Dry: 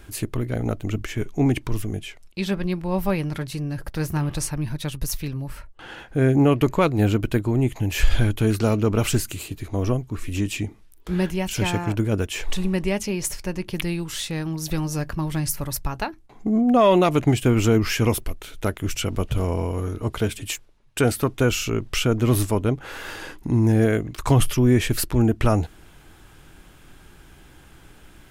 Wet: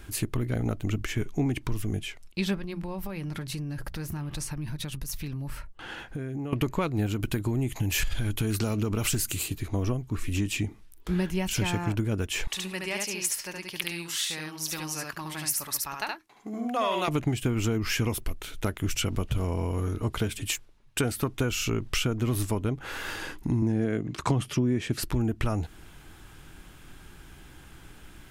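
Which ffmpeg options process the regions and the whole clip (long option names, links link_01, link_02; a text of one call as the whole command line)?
ffmpeg -i in.wav -filter_complex "[0:a]asettb=1/sr,asplit=3[link_01][link_02][link_03];[link_01]atrim=end=2.564[link_04];[link_02]atrim=start=2.56:end=6.53,asetpts=PTS-STARTPTS,afade=type=in:duration=0.004:curve=qsin,afade=type=out:start_time=3.966:duration=0.004:curve=qsin,bandreject=frequency=60:width_type=h:width=6,bandreject=frequency=120:width_type=h:width=6,bandreject=frequency=180:width_type=h:width=6,acompressor=threshold=-29dB:ratio=12:attack=3.2:release=140:knee=1:detection=peak[link_05];[link_03]atrim=start=6.526[link_06];[link_04][link_05]acrossfade=duration=0.004:curve1=hsin:curve2=qsin[link_07];[link_07][link_06]acrossfade=duration=0.004:curve1=qsin:curve2=hsin,asettb=1/sr,asplit=3[link_08][link_09][link_10];[link_08]atrim=end=7.064[link_11];[link_09]atrim=start=7.06:end=9.58,asetpts=PTS-STARTPTS,afade=type=in:duration=0.004:curve=qsin,afade=type=out:start_time=2.516:duration=0.004:curve=qsin,highshelf=frequency=4700:gain=6.5,acompressor=threshold=-19dB:ratio=2.5:attack=3.2:release=140:knee=1:detection=peak[link_12];[link_10]atrim=start=9.576[link_13];[link_11][link_12]acrossfade=duration=0.004:curve1=hsin:curve2=qsin[link_14];[link_14][link_13]acrossfade=duration=0.004:curve1=qsin:curve2=hsin,asettb=1/sr,asplit=3[link_15][link_16][link_17];[link_15]atrim=end=12.474[link_18];[link_16]atrim=start=12.47:end=17.08,asetpts=PTS-STARTPTS,afade=type=in:duration=0.004:curve=qsin,afade=type=out:start_time=4.606:duration=0.004:curve=qsin,highpass=frequency=1200:poles=1,aecho=1:1:71:0.708,atrim=end_sample=203301[link_19];[link_17]atrim=start=17.076[link_20];[link_18][link_19]acrossfade=duration=0.004:curve1=hsin:curve2=qsin[link_21];[link_21][link_20]acrossfade=duration=0.004:curve1=qsin:curve2=hsin,asettb=1/sr,asplit=3[link_22][link_23][link_24];[link_22]atrim=end=23.624[link_25];[link_23]atrim=start=23.62:end=25.03,asetpts=PTS-STARTPTS,afade=type=in:duration=0.004:curve=qsin,afade=type=out:start_time=1.406:duration=0.004:curve=qsin,highpass=150,lowpass=8000,lowshelf=frequency=470:gain=8[link_26];[link_24]atrim=start=25.026[link_27];[link_25][link_26]acrossfade=duration=0.004:curve1=hsin:curve2=qsin[link_28];[link_28][link_27]acrossfade=duration=0.004:curve1=qsin:curve2=hsin,equalizer=frequency=550:width_type=o:width=1.1:gain=-3.5,acompressor=threshold=-23dB:ratio=6" out.wav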